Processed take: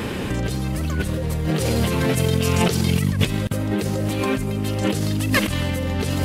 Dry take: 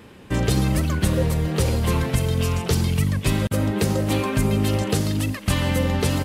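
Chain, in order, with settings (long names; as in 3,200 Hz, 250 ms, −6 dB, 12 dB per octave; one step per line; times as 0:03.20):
in parallel at −1 dB: brickwall limiter −19.5 dBFS, peak gain reduction 11 dB
0:01.50–0:03.12: on the sum: high-pass filter 120 Hz 12 dB per octave
compressor whose output falls as the input rises −27 dBFS, ratio −1
dynamic equaliser 1,000 Hz, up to −4 dB, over −42 dBFS, Q 2.2
level +5.5 dB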